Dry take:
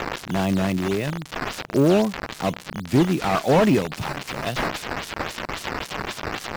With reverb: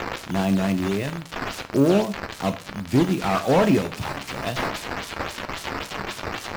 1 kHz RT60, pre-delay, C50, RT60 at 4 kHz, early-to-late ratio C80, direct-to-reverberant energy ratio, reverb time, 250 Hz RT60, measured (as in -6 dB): 0.45 s, 4 ms, 14.5 dB, 0.40 s, 18.5 dB, 8.0 dB, 0.45 s, 0.45 s